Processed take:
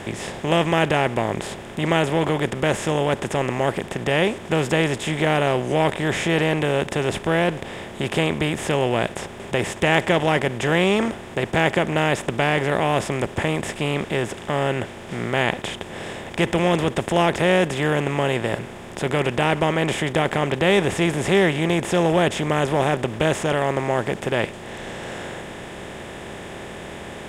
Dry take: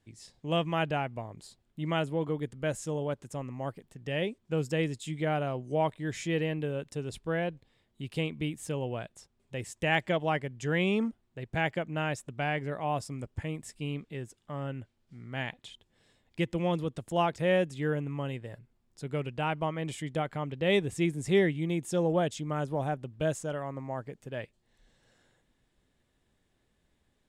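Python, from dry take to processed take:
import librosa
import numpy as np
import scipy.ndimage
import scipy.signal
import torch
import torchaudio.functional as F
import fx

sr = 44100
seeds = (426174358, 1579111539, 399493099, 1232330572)

y = fx.bin_compress(x, sr, power=0.4)
y = F.gain(torch.from_numpy(y), 4.5).numpy()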